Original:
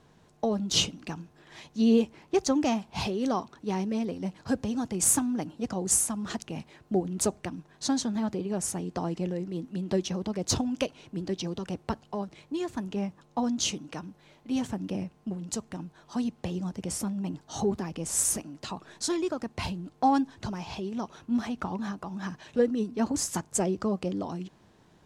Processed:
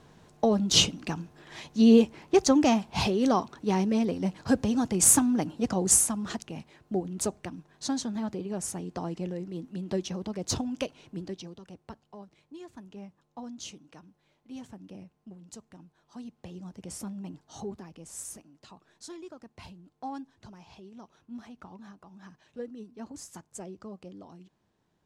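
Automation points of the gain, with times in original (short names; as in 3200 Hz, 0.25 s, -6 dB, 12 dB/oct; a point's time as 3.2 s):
5.88 s +4 dB
6.56 s -3 dB
11.18 s -3 dB
11.59 s -13 dB
16.2 s -13 dB
17.1 s -6 dB
18.27 s -14.5 dB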